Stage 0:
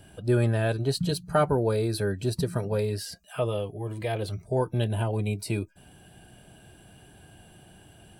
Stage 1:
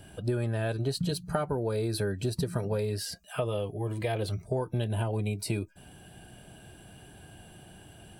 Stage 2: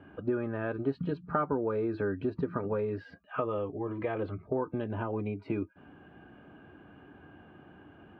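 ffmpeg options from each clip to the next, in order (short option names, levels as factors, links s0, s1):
-af "acompressor=threshold=0.0447:ratio=12,volume=1.19"
-af "highpass=100,equalizer=f=120:t=q:w=4:g=-10,equalizer=f=180:t=q:w=4:g=-4,equalizer=f=280:t=q:w=4:g=7,equalizer=f=670:t=q:w=4:g=-5,equalizer=f=1200:t=q:w=4:g=8,equalizer=f=1900:t=q:w=4:g=-3,lowpass=f=2100:w=0.5412,lowpass=f=2100:w=1.3066"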